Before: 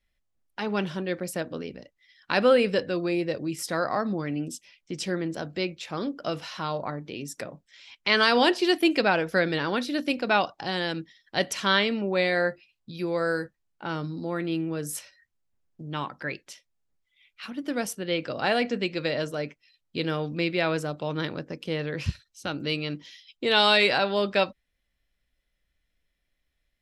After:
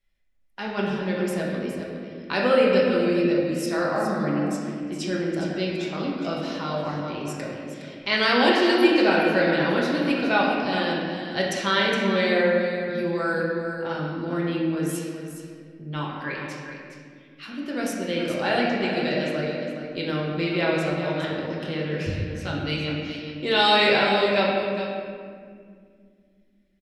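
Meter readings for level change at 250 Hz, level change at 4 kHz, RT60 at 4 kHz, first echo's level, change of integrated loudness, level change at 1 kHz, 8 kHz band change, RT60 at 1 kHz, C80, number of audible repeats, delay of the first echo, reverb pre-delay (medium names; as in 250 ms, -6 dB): +5.0 dB, +1.0 dB, 1.4 s, -9.0 dB, +3.0 dB, +3.0 dB, -1.0 dB, 1.9 s, 1.0 dB, 1, 414 ms, 5 ms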